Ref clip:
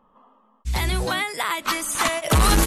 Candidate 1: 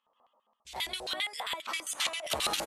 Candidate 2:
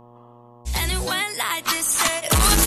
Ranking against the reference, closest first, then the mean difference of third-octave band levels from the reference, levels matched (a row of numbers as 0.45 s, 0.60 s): 2, 1; 3.0 dB, 6.5 dB